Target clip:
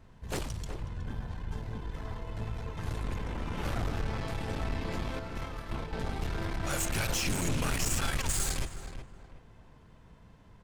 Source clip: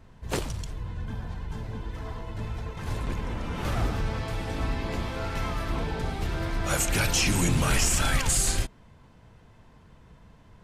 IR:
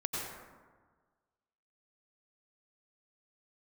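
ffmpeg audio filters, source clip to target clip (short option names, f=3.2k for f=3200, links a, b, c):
-filter_complex "[0:a]asettb=1/sr,asplit=3[a][b][c];[a]atrim=end=5.194[d];[b]atrim=start=5.19:end=5.93,asetpts=PTS-STARTPTS,afade=t=in:d=0.004:c=qsin,afade=t=out:st=0.736:d=0.004:c=qsin,agate=range=-8dB:threshold=-27dB:ratio=16:detection=peak[e];[c]atrim=start=5.926[f];[d][e]acrossfade=d=0.004:c1=hsin:c2=qsin[g];[g][f]acrossfade=d=0.004:c1=qsin:c2=hsin,aeval=exprs='(tanh(20*val(0)+0.5)-tanh(0.5))/20':c=same,asplit=2[h][i];[i]adelay=369,lowpass=f=1.9k:p=1,volume=-8dB,asplit=2[j][k];[k]adelay=369,lowpass=f=1.9k:p=1,volume=0.34,asplit=2[l][m];[m]adelay=369,lowpass=f=1.9k:p=1,volume=0.34,asplit=2[n][o];[o]adelay=369,lowpass=f=1.9k:p=1,volume=0.34[p];[h][j][l][n][p]amix=inputs=5:normalize=0,volume=-1.5dB"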